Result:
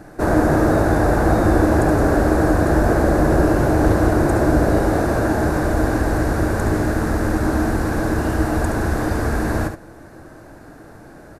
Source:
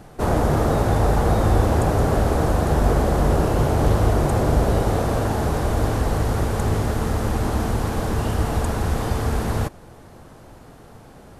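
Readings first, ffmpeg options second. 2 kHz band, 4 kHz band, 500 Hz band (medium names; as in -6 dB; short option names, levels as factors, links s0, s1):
+7.5 dB, -2.0 dB, +4.0 dB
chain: -filter_complex "[0:a]equalizer=f=315:t=o:w=0.33:g=11,equalizer=f=630:t=o:w=0.33:g=5,equalizer=f=1600:t=o:w=0.33:g=10,equalizer=f=3150:t=o:w=0.33:g=-9,asplit=2[s0][s1];[s1]aecho=0:1:71:0.398[s2];[s0][s2]amix=inputs=2:normalize=0"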